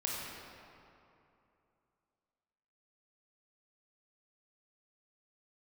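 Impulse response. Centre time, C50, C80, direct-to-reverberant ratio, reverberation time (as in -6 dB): 146 ms, -2.0 dB, -0.5 dB, -4.0 dB, 2.8 s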